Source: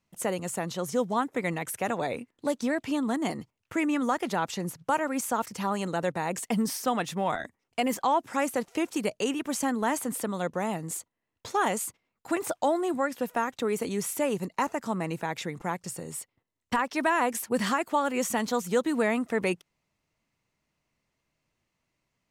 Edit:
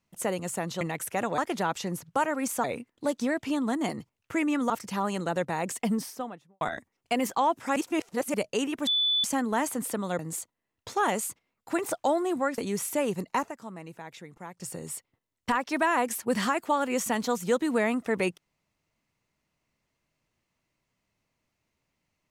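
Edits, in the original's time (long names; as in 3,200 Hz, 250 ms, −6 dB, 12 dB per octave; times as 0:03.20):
0:00.81–0:01.48: remove
0:04.11–0:05.37: move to 0:02.05
0:06.43–0:07.28: fade out and dull
0:08.43–0:09.01: reverse
0:09.54: insert tone 3,480 Hz −22 dBFS 0.37 s
0:10.49–0:10.77: remove
0:13.16–0:13.82: remove
0:14.62–0:15.93: duck −11 dB, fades 0.17 s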